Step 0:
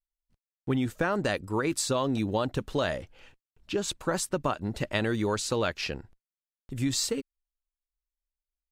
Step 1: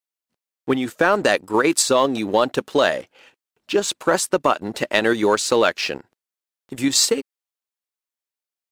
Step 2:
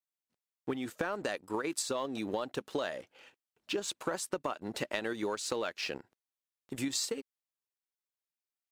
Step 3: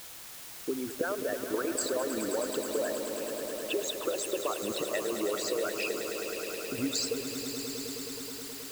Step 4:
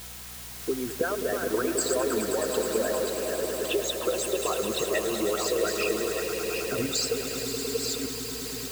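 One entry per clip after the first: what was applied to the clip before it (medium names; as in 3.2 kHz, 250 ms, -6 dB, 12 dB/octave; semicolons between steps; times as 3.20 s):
high-pass 290 Hz 12 dB/octave; in parallel at +1.5 dB: level held to a coarse grid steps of 15 dB; on the sum: waveshaping leveller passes 1; trim +3 dB
compression, threshold -24 dBFS, peak gain reduction 12 dB; trim -7.5 dB
resonances exaggerated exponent 3; word length cut 8-bit, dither triangular; echo with a slow build-up 106 ms, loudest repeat 5, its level -11 dB; trim +2 dB
chunks repeated in reverse 620 ms, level -4.5 dB; hum 60 Hz, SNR 21 dB; comb of notches 290 Hz; trim +5 dB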